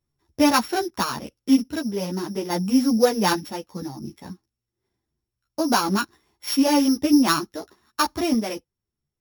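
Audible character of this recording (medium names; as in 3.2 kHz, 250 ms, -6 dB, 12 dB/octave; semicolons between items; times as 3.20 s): a buzz of ramps at a fixed pitch in blocks of 8 samples; random-step tremolo 1.2 Hz; a shimmering, thickened sound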